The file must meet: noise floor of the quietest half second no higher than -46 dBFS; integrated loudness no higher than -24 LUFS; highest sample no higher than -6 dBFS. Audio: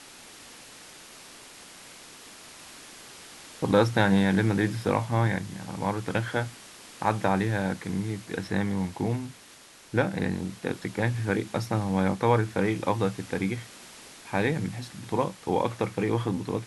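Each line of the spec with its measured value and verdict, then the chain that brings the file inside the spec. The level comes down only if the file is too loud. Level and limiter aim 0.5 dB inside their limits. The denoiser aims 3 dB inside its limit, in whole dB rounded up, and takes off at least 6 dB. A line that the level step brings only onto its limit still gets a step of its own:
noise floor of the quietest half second -51 dBFS: OK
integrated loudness -28.0 LUFS: OK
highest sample -7.5 dBFS: OK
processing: none

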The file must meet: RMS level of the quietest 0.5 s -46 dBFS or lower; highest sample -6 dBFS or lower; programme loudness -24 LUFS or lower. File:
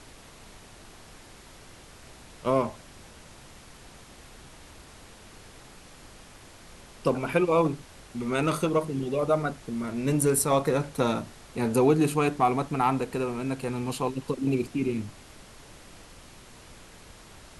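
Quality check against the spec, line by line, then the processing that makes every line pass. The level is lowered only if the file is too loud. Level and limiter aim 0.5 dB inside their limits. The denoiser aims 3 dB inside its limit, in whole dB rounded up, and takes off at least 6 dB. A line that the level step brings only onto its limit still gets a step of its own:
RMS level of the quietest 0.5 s -49 dBFS: OK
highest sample -10.5 dBFS: OK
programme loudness -27.0 LUFS: OK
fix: none

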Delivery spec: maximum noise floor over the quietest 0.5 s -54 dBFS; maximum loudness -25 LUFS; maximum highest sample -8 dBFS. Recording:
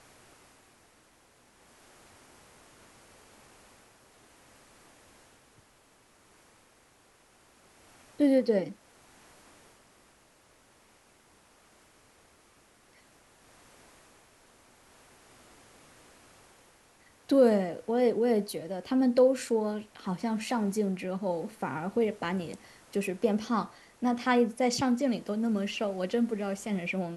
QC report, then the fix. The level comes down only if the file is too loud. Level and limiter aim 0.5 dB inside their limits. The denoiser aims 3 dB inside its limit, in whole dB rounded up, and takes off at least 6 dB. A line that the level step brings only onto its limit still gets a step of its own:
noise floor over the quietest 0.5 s -62 dBFS: OK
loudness -29.0 LUFS: OK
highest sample -12.5 dBFS: OK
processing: none

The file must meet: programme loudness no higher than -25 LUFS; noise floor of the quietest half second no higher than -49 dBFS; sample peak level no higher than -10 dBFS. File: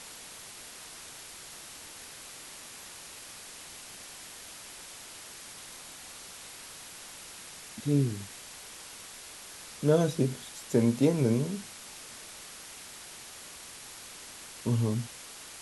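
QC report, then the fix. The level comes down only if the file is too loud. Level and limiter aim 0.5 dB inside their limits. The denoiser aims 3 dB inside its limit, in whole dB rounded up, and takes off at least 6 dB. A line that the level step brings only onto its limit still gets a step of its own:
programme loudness -35.0 LUFS: OK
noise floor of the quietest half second -47 dBFS: fail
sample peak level -11.5 dBFS: OK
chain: denoiser 6 dB, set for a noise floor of -47 dBFS

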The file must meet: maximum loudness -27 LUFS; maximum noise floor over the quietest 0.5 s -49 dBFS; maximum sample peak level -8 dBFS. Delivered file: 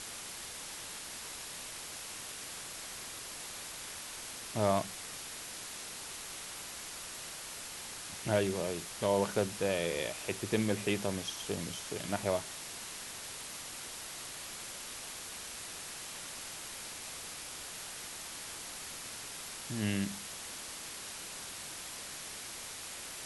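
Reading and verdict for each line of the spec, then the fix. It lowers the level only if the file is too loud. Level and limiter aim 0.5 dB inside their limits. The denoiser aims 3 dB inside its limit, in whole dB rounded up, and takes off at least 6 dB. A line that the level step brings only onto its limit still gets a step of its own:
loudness -38.0 LUFS: OK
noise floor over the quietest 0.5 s -45 dBFS: fail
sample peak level -15.5 dBFS: OK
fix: denoiser 7 dB, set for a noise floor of -45 dBFS

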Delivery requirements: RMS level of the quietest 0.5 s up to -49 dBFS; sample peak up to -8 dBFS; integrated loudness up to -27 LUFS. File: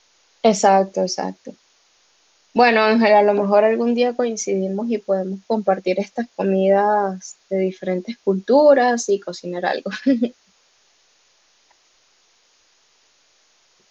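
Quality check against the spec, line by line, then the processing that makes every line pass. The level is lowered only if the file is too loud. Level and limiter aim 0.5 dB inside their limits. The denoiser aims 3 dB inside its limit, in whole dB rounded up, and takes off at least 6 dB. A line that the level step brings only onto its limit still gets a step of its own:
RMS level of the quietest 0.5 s -59 dBFS: OK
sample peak -3.0 dBFS: fail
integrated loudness -18.5 LUFS: fail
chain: gain -9 dB

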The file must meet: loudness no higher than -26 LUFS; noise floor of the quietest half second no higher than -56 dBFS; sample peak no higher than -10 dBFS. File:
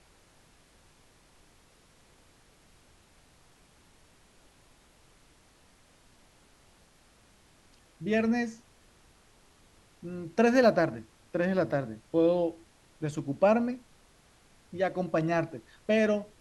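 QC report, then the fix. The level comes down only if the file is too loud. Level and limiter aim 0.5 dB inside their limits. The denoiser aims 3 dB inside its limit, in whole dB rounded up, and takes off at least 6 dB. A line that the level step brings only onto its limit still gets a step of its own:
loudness -28.5 LUFS: OK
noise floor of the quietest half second -61 dBFS: OK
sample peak -11.5 dBFS: OK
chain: none

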